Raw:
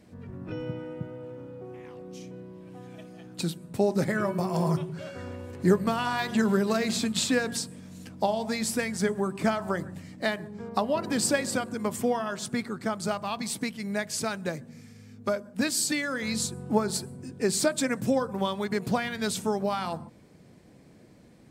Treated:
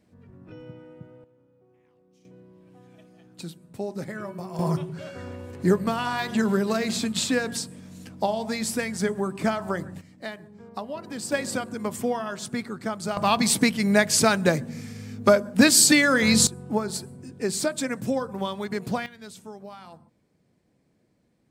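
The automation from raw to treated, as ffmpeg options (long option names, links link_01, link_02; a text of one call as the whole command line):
ffmpeg -i in.wav -af "asetnsamples=nb_out_samples=441:pad=0,asendcmd='1.24 volume volume -19.5dB;2.25 volume volume -7.5dB;4.59 volume volume 1dB;10.01 volume volume -7.5dB;11.32 volume volume 0dB;13.17 volume volume 11dB;16.47 volume volume -1dB;19.06 volume volume -13.5dB',volume=-8.5dB" out.wav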